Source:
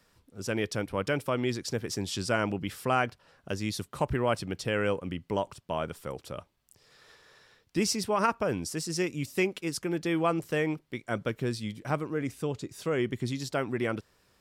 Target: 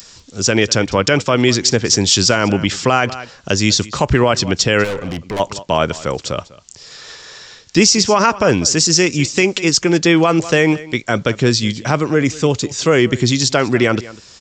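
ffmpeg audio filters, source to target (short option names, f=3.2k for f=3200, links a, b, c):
-filter_complex "[0:a]aresample=16000,aresample=44100,acrossover=split=430|3300[a][b][c];[c]acompressor=mode=upward:threshold=-59dB:ratio=2.5[d];[a][b][d]amix=inputs=3:normalize=0,aemphasis=mode=production:type=75kf,asplit=2[e][f];[f]aecho=0:1:197:0.0944[g];[e][g]amix=inputs=2:normalize=0,asplit=3[h][i][j];[h]afade=t=out:st=4.83:d=0.02[k];[i]aeval=exprs='(tanh(63.1*val(0)+0.3)-tanh(0.3))/63.1':c=same,afade=t=in:st=4.83:d=0.02,afade=t=out:st=5.39:d=0.02[l];[j]afade=t=in:st=5.39:d=0.02[m];[k][l][m]amix=inputs=3:normalize=0,alimiter=level_in=17.5dB:limit=-1dB:release=50:level=0:latency=1,volume=-1dB"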